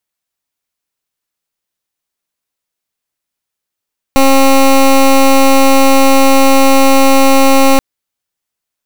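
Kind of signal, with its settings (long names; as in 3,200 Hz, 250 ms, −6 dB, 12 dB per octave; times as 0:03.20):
pulse wave 270 Hz, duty 16% −6 dBFS 3.63 s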